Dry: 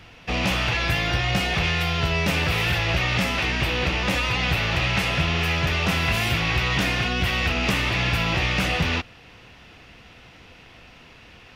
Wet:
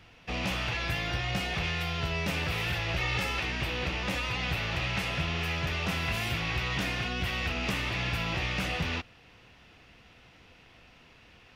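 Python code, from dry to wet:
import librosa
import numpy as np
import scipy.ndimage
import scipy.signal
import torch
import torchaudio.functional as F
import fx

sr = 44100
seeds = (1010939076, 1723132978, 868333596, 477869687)

y = fx.comb(x, sr, ms=2.3, depth=0.58, at=(2.98, 3.4))
y = y * librosa.db_to_amplitude(-8.5)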